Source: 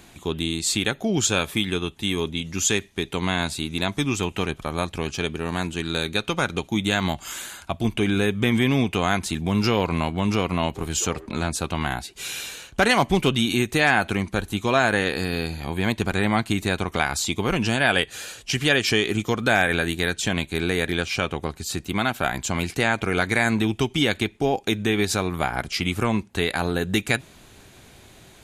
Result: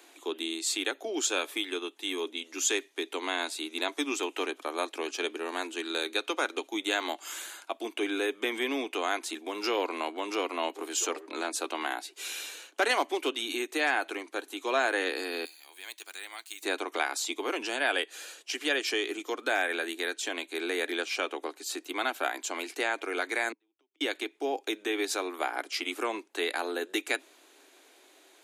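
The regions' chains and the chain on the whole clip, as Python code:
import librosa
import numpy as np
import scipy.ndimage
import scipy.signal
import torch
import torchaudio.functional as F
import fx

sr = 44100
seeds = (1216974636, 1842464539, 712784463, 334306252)

y = fx.chain(x, sr, fx.median_filter(points=3),
    fx.differentiator(), at=(15.45, 16.63))
y = fx.chain(y, sr, fx.gate_flip(shuts_db=-20.0, range_db=-42),
    fx.air_absorb(metres=81.0), at=(23.52, 24.01))
y = scipy.signal.sosfilt(scipy.signal.butter(12, 280.0, 'highpass', fs=sr, output='sos'), y)
y = fx.rider(y, sr, range_db=3, speed_s=2.0)
y = y * 10.0 ** (-7.0 / 20.0)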